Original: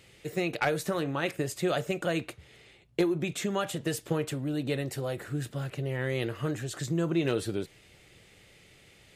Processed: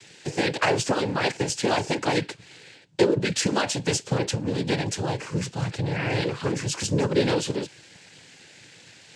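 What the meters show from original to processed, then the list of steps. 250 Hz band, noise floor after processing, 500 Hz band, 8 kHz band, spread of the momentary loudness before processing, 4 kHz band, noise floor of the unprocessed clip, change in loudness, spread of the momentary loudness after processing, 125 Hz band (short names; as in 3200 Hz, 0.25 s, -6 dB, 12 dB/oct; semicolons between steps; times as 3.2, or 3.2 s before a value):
+4.0 dB, -51 dBFS, +5.5 dB, +10.0 dB, 7 LU, +10.0 dB, -58 dBFS, +6.0 dB, 7 LU, +5.0 dB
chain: high shelf 4600 Hz +11 dB; noise vocoder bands 8; gain +5.5 dB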